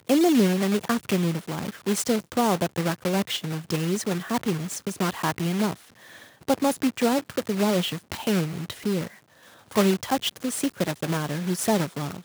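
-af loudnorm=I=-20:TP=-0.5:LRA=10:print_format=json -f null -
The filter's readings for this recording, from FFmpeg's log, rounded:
"input_i" : "-25.7",
"input_tp" : "-7.8",
"input_lra" : "1.4",
"input_thresh" : "-36.0",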